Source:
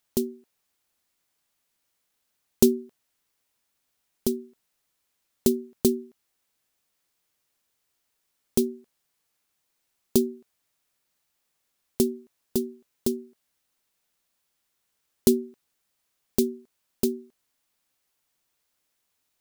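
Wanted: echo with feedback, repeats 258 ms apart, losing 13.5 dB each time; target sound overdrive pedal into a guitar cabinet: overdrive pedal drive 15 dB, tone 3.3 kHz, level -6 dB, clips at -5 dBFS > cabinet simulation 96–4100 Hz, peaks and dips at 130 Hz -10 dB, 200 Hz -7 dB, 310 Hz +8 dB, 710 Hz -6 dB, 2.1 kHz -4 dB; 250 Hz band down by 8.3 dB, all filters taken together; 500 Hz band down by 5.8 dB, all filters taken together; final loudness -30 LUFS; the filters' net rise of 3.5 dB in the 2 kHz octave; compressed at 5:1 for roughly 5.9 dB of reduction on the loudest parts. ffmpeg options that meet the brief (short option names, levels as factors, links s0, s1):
-filter_complex "[0:a]equalizer=f=250:t=o:g=-6.5,equalizer=f=500:t=o:g=-8,equalizer=f=2000:t=o:g=7.5,acompressor=threshold=0.0447:ratio=5,aecho=1:1:258|516:0.211|0.0444,asplit=2[s0][s1];[s1]highpass=f=720:p=1,volume=5.62,asoftclip=type=tanh:threshold=0.562[s2];[s0][s2]amix=inputs=2:normalize=0,lowpass=f=3300:p=1,volume=0.501,highpass=96,equalizer=f=130:t=q:w=4:g=-10,equalizer=f=200:t=q:w=4:g=-7,equalizer=f=310:t=q:w=4:g=8,equalizer=f=710:t=q:w=4:g=-6,equalizer=f=2100:t=q:w=4:g=-4,lowpass=f=4100:w=0.5412,lowpass=f=4100:w=1.3066,volume=2.66"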